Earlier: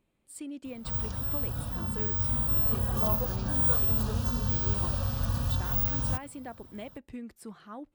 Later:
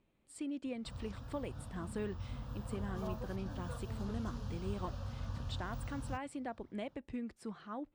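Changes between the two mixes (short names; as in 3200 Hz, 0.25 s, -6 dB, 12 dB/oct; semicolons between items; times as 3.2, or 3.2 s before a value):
background -11.5 dB; master: add air absorption 69 m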